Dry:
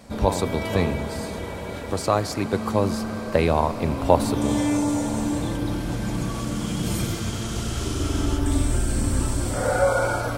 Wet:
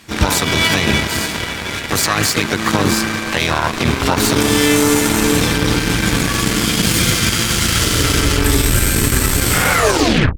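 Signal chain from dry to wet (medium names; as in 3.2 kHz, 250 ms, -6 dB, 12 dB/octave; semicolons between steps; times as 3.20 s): tape stop on the ending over 0.65 s; FFT filter 310 Hz 0 dB, 580 Hz -7 dB, 1.7 kHz +12 dB, 9 kHz +7 dB, 14 kHz -1 dB; peak limiter -15 dBFS, peak gain reduction 11 dB; harmony voices +7 st -3 dB; Chebyshev shaper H 5 -17 dB, 7 -14 dB, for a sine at -10.5 dBFS; trim +8 dB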